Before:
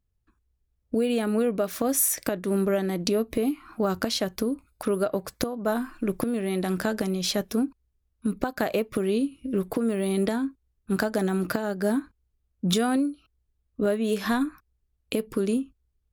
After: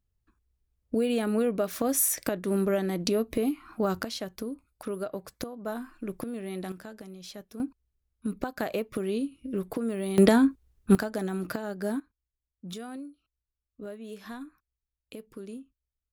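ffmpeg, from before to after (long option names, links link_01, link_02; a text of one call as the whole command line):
ffmpeg -i in.wav -af "asetnsamples=nb_out_samples=441:pad=0,asendcmd='4.03 volume volume -8.5dB;6.72 volume volume -17dB;7.6 volume volume -5dB;10.18 volume volume 7dB;10.95 volume volume -6dB;12 volume volume -16dB',volume=-2dB" out.wav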